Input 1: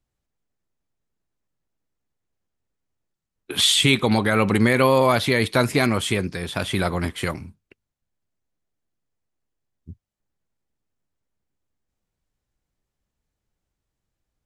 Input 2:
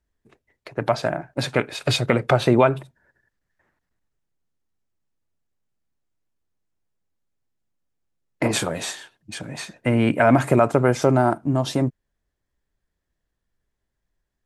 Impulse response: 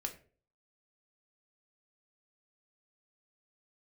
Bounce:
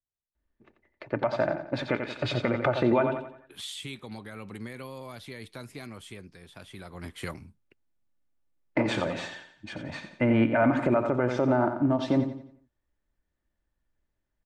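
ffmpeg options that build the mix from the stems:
-filter_complex "[0:a]acrossover=split=280|3000[a][b][c];[b]acompressor=threshold=-21dB:ratio=2.5[d];[a][d][c]amix=inputs=3:normalize=0,volume=-10dB,afade=t=in:st=6.89:d=0.35:silence=0.281838[e];[1:a]lowpass=2.9k,aecho=1:1:3.4:0.36,adelay=350,volume=-3.5dB,asplit=2[f][g];[g]volume=-9.5dB,aecho=0:1:88|176|264|352|440:1|0.39|0.152|0.0593|0.0231[h];[e][f][h]amix=inputs=3:normalize=0,alimiter=limit=-13.5dB:level=0:latency=1:release=130"

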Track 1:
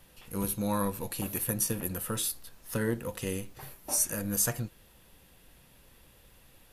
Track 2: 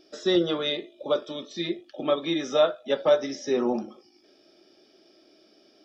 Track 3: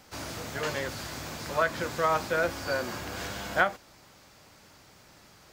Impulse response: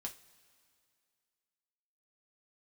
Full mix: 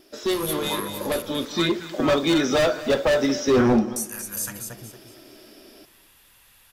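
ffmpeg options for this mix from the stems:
-filter_complex "[0:a]volume=-2dB,asplit=3[a][b][c];[a]atrim=end=1.22,asetpts=PTS-STARTPTS,afade=t=out:st=1.216:d=0.004:c=hsin[d];[b]atrim=start=1.22:end=3.96,asetpts=PTS-STARTPTS,volume=0[e];[c]atrim=start=3.96,asetpts=PTS-STARTPTS,afade=t=in:d=0.004:c=hsin[f];[d][e][f]concat=n=3:v=0:a=1,asplit=4[g][h][i][j];[h]volume=-16.5dB[k];[i]volume=-13.5dB[l];[1:a]asoftclip=type=hard:threshold=-25.5dB,lowshelf=f=160:g=9.5,volume=-1.5dB,asplit=3[m][n][o];[n]volume=-4.5dB[p];[o]volume=-14dB[q];[2:a]volume=-13dB[r];[j]apad=whole_len=257970[s];[m][s]sidechaincompress=threshold=-42dB:ratio=8:attack=5.7:release=161[t];[g][r]amix=inputs=2:normalize=0,highpass=f=840:w=0.5412,highpass=f=840:w=1.3066,alimiter=level_in=3.5dB:limit=-24dB:level=0:latency=1:release=287,volume=-3.5dB,volume=0dB[u];[3:a]atrim=start_sample=2205[v];[k][p]amix=inputs=2:normalize=0[w];[w][v]afir=irnorm=-1:irlink=0[x];[l][q]amix=inputs=2:normalize=0,aecho=0:1:229|458|687|916:1|0.29|0.0841|0.0244[y];[t][u][x][y]amix=inputs=4:normalize=0,dynaudnorm=f=130:g=5:m=7.5dB"

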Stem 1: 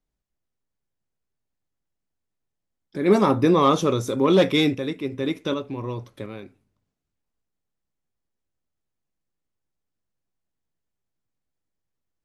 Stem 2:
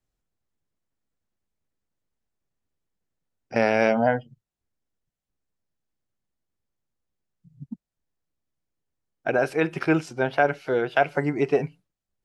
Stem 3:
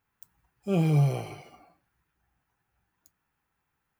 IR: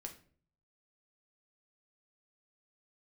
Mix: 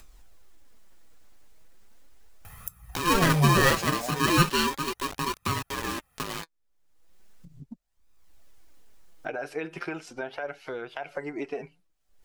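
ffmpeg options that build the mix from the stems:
-filter_complex "[0:a]bass=f=250:g=-13,treble=f=4k:g=0,acrusher=bits=5:mix=0:aa=0.000001,aeval=exprs='val(0)*sgn(sin(2*PI*690*n/s))':c=same,volume=0.5dB[a];[1:a]equalizer=f=120:t=o:w=1.9:g=-13.5,alimiter=limit=-15dB:level=0:latency=1,volume=-10.5dB[b];[2:a]equalizer=f=11k:t=o:w=0.61:g=11.5,aecho=1:1:1.6:0.75,adelay=2450,volume=1.5dB[c];[a][b][c]amix=inputs=3:normalize=0,lowshelf=f=130:g=6,acompressor=mode=upward:threshold=-20dB:ratio=2.5,flanger=delay=0.8:depth=6:regen=47:speed=0.37:shape=sinusoidal"

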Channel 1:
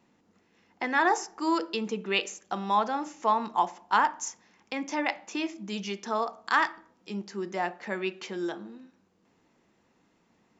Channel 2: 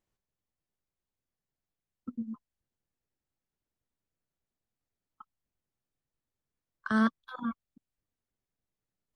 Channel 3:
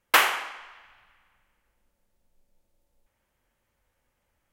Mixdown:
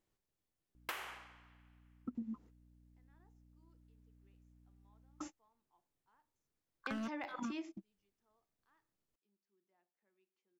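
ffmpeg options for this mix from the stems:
-filter_complex "[0:a]deesser=0.9,adelay=2150,volume=-5.5dB[a];[1:a]asoftclip=type=hard:threshold=-26dB,volume=-0.5dB,asplit=2[b][c];[2:a]aeval=exprs='val(0)+0.00501*(sin(2*PI*60*n/s)+sin(2*PI*2*60*n/s)/2+sin(2*PI*3*60*n/s)/3+sin(2*PI*4*60*n/s)/4+sin(2*PI*5*60*n/s)/5)':c=same,adelay=750,volume=-18.5dB[d];[c]apad=whole_len=561919[e];[a][e]sidechaingate=range=-46dB:threshold=-58dB:ratio=16:detection=peak[f];[f][b][d]amix=inputs=3:normalize=0,equalizer=f=340:w=2:g=4.5,acompressor=threshold=-38dB:ratio=16"

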